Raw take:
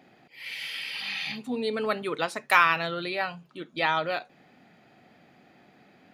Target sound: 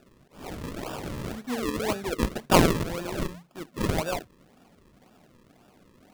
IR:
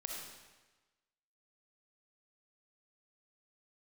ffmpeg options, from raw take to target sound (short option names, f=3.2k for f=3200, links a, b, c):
-filter_complex "[0:a]asettb=1/sr,asplit=3[a][b][c];[a]atrim=end=2.184[d];[b]atrim=start=2.18:end=2.83,asetpts=PTS-STARTPTS,afade=t=in:d=0.004:c=qsin,afade=t=out:st=0.646:d=0.004:c=qsin,lowshelf=f=450:g=8.5[e];[c]atrim=start=2.826[f];[d][e]acrossfade=d=0.004:c1=hsin:c2=qsin[g];[g][f]acrossfade=d=0.004:c1=qsin:c2=hsin,acrusher=samples=41:mix=1:aa=0.000001:lfo=1:lforange=41:lforate=1.9"